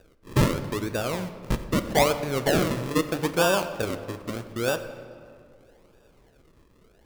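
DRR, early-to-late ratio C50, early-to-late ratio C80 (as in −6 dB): 9.0 dB, 11.0 dB, 12.0 dB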